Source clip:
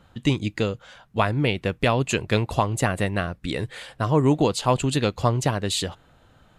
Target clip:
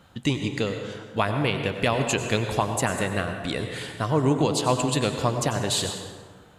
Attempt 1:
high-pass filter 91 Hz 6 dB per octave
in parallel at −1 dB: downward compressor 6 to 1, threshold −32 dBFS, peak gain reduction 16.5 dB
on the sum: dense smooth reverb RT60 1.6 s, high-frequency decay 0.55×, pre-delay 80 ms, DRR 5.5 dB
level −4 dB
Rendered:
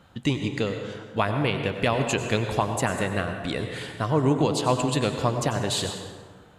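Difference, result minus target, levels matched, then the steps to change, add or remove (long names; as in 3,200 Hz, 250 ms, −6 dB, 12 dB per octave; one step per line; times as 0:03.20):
8,000 Hz band −3.0 dB
add after high-pass filter: high-shelf EQ 4,600 Hz +5 dB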